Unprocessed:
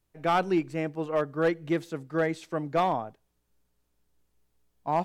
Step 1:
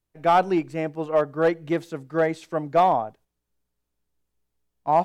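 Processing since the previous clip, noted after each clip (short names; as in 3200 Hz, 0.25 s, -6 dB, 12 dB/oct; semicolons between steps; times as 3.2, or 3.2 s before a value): gate -56 dBFS, range -7 dB; dynamic EQ 730 Hz, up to +7 dB, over -37 dBFS, Q 1.3; gain +1.5 dB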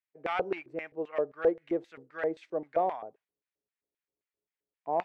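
LFO band-pass square 3.8 Hz 450–2100 Hz; gain -2 dB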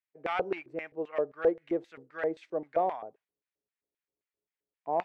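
nothing audible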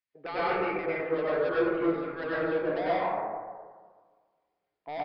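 soft clip -33 dBFS, distortion -5 dB; plate-style reverb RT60 1.6 s, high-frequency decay 0.3×, pre-delay 85 ms, DRR -9.5 dB; downsampling 11025 Hz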